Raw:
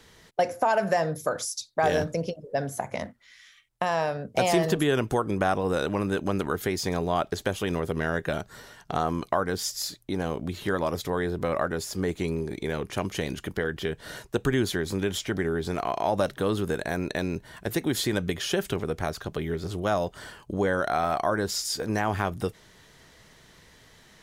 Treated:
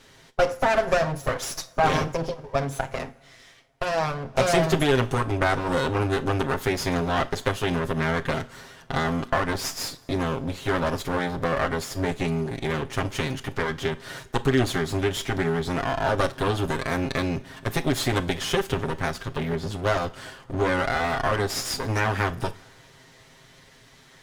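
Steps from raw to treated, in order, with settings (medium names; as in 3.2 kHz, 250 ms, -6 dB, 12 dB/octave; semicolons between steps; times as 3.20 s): comb filter that takes the minimum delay 7.5 ms; treble shelf 11 kHz -8.5 dB; reverberation, pre-delay 26 ms, DRR 15 dB; trim +4 dB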